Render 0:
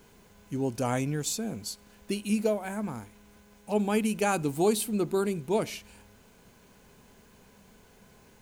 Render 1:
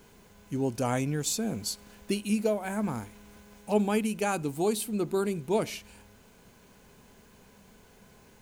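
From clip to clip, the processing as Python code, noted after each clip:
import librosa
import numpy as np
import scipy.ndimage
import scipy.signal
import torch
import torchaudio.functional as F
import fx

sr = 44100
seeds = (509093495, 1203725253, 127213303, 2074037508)

y = fx.rider(x, sr, range_db=4, speed_s=0.5)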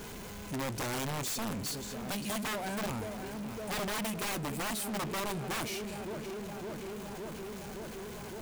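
y = fx.echo_filtered(x, sr, ms=563, feedback_pct=70, hz=3800.0, wet_db=-16.5)
y = (np.mod(10.0 ** (24.5 / 20.0) * y + 1.0, 2.0) - 1.0) / 10.0 ** (24.5 / 20.0)
y = fx.power_curve(y, sr, exponent=0.35)
y = F.gain(torch.from_numpy(y), -7.5).numpy()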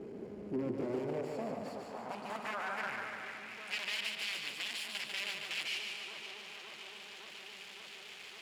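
y = fx.lower_of_two(x, sr, delay_ms=0.41)
y = fx.filter_sweep_bandpass(y, sr, from_hz=350.0, to_hz=3100.0, start_s=0.69, end_s=3.95, q=2.2)
y = fx.echo_feedback(y, sr, ms=145, feedback_pct=58, wet_db=-5)
y = F.gain(torch.from_numpy(y), 6.0).numpy()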